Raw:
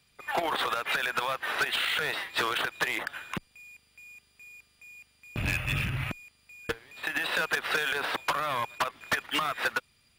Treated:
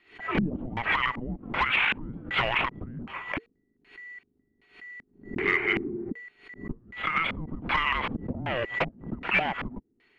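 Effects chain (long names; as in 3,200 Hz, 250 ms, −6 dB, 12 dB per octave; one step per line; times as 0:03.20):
frequency shifter −480 Hz
auto-filter low-pass square 1.3 Hz 240–2,400 Hz
background raised ahead of every attack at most 140 dB per second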